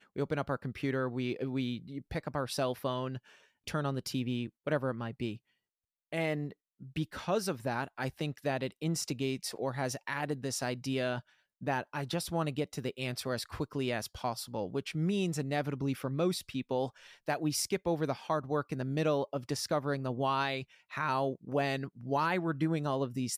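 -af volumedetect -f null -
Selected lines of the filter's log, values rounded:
mean_volume: -34.5 dB
max_volume: -19.1 dB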